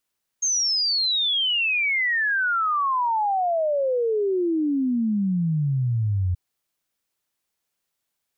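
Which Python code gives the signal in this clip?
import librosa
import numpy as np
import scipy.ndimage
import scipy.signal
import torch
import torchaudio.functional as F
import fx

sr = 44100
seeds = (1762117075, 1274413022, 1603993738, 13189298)

y = fx.ess(sr, length_s=5.93, from_hz=6500.0, to_hz=87.0, level_db=-19.5)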